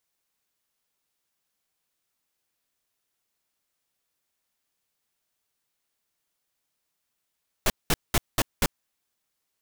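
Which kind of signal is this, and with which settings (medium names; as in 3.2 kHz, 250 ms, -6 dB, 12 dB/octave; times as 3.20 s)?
noise bursts pink, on 0.04 s, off 0.20 s, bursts 5, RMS -21 dBFS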